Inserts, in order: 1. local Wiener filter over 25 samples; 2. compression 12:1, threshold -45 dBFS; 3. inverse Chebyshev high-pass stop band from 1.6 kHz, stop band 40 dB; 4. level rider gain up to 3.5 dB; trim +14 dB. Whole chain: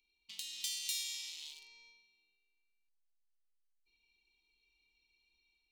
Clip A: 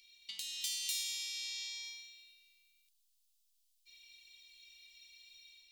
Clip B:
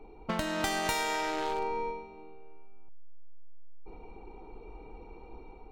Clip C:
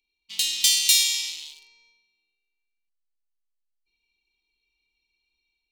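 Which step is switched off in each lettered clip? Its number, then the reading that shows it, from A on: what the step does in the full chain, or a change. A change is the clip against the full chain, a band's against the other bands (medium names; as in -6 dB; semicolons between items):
1, crest factor change -3.0 dB; 3, crest factor change -8.0 dB; 2, mean gain reduction 5.5 dB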